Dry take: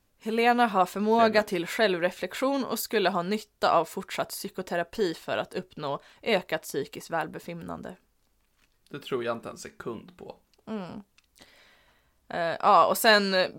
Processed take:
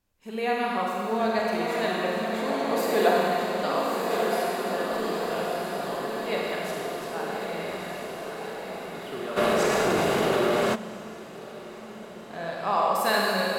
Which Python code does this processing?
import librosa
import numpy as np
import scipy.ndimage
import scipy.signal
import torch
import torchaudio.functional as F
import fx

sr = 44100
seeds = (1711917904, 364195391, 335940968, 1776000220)

y = fx.peak_eq(x, sr, hz=720.0, db=11.5, octaves=2.2, at=(2.67, 3.15))
y = fx.echo_diffused(y, sr, ms=1239, feedback_pct=64, wet_db=-4.0)
y = fx.rev_schroeder(y, sr, rt60_s=2.6, comb_ms=32, drr_db=-3.5)
y = fx.env_flatten(y, sr, amount_pct=70, at=(9.36, 10.74), fade=0.02)
y = F.gain(torch.from_numpy(y), -8.0).numpy()